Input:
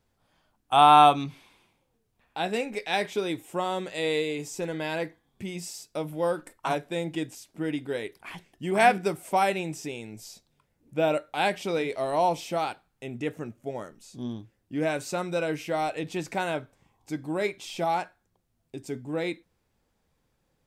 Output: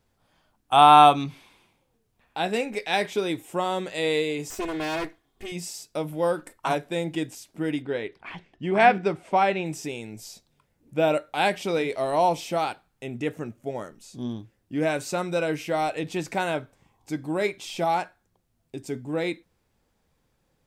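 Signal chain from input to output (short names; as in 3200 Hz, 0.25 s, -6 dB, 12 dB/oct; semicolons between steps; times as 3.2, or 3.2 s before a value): 4.5–5.52 minimum comb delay 2.8 ms; 7.82–9.66 LPF 3600 Hz 12 dB/oct; gain +2.5 dB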